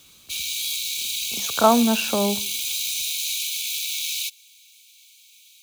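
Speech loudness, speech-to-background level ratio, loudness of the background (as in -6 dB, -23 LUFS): -21.5 LUFS, 3.0 dB, -24.5 LUFS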